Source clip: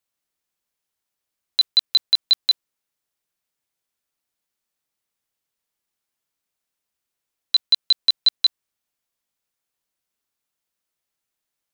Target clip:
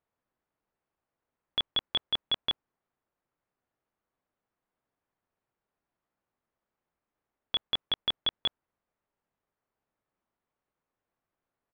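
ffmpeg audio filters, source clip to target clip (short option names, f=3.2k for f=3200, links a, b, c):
-af "lowpass=1.5k,asetrate=37084,aresample=44100,atempo=1.18921,volume=5dB"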